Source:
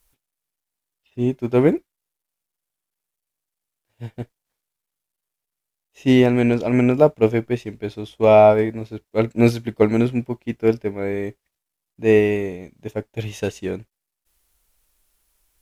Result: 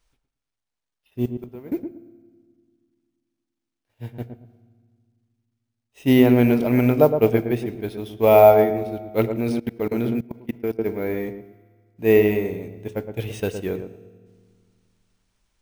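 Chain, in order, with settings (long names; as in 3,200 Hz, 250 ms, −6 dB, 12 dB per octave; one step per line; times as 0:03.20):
0:01.25–0:01.72: gate with flip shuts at −16 dBFS, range −24 dB
noise that follows the level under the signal 34 dB
bad sample-rate conversion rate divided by 3×, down filtered, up hold
feedback echo with a low-pass in the loop 114 ms, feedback 29%, low-pass 930 Hz, level −6.5 dB
on a send at −15.5 dB: convolution reverb RT60 1.7 s, pre-delay 3 ms
0:09.38–0:10.79: on the sum: output level in coarse steps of 21 dB
level −1.5 dB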